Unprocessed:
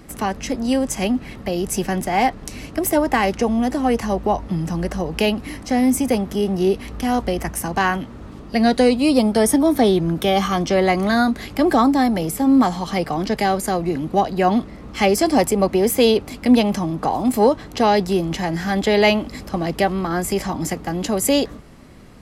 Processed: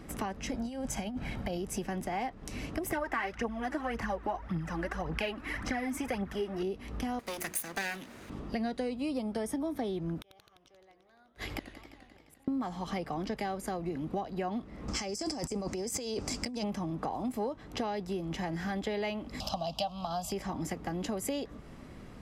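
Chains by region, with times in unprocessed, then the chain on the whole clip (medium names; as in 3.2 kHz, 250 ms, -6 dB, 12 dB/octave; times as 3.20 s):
0.51–1.58 s: comb 1.3 ms, depth 39% + compressor with a negative ratio -23 dBFS, ratio -0.5
2.90–6.63 s: peaking EQ 1.6 kHz +12.5 dB 1.4 oct + phaser 1.8 Hz, delay 3.6 ms, feedback 59%
7.19–8.30 s: comb filter that takes the minimum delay 0.45 ms + RIAA curve recording + hum notches 60/120/180/240/300/360/420/480 Hz
10.21–12.48 s: peaking EQ 210 Hz -12.5 dB 0.53 oct + inverted gate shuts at -16 dBFS, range -40 dB + modulated delay 87 ms, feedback 78%, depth 196 cents, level -13.5 dB
14.88–16.64 s: high-order bell 6.3 kHz +15 dB 1.1 oct + compressor with a negative ratio -23 dBFS
19.40–20.32 s: FFT filter 160 Hz 0 dB, 270 Hz -4 dB, 390 Hz -21 dB, 650 Hz +11 dB, 1.2 kHz +1 dB, 2 kHz -19 dB, 2.8 kHz +11 dB, 4.6 kHz +15 dB, 9.9 kHz +1 dB, 14 kHz +7 dB + tape noise reduction on one side only encoder only
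whole clip: treble shelf 5.9 kHz -7 dB; compression 5:1, threshold -29 dBFS; band-stop 4.3 kHz, Q 18; trim -4 dB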